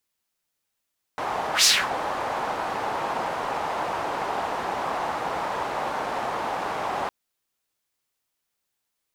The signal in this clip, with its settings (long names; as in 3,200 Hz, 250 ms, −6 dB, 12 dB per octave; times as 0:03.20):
pass-by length 5.91 s, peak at 0:00.46, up 0.11 s, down 0.27 s, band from 850 Hz, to 5,600 Hz, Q 2.1, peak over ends 12.5 dB